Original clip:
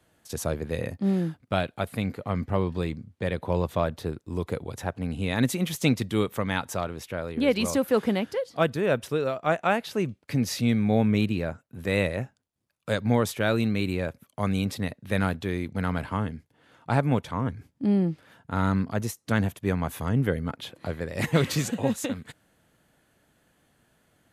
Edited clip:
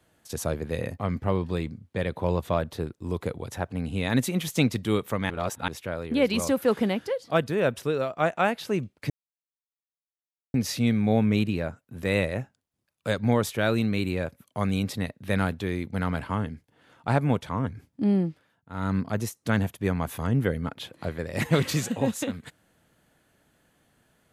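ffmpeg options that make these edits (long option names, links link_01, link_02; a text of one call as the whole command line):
ffmpeg -i in.wav -filter_complex "[0:a]asplit=7[link_01][link_02][link_03][link_04][link_05][link_06][link_07];[link_01]atrim=end=0.992[link_08];[link_02]atrim=start=2.248:end=6.562[link_09];[link_03]atrim=start=6.558:end=6.942,asetpts=PTS-STARTPTS,areverse[link_10];[link_04]atrim=start=6.938:end=10.36,asetpts=PTS-STARTPTS,afade=type=out:start_time=3.418:duration=0.004:curve=hsin,apad=pad_dur=1.44[link_11];[link_05]atrim=start=10.36:end=18.31,asetpts=PTS-STARTPTS,afade=type=in:duration=0.004:curve=hsin,afade=type=out:start_time=7.65:duration=0.3:silence=0.177828[link_12];[link_06]atrim=start=18.31:end=18.51,asetpts=PTS-STARTPTS,volume=-15dB[link_13];[link_07]atrim=start=18.51,asetpts=PTS-STARTPTS,afade=type=in:duration=0.3:silence=0.177828[link_14];[link_08][link_09]acrossfade=duration=0.004:curve1=hsin:curve2=hsin[link_15];[link_15][link_10]acrossfade=duration=0.004:curve1=hsin:curve2=hsin[link_16];[link_11][link_12][link_13][link_14]concat=n=4:v=0:a=1[link_17];[link_16][link_17]acrossfade=duration=0.004:curve1=hsin:curve2=hsin" out.wav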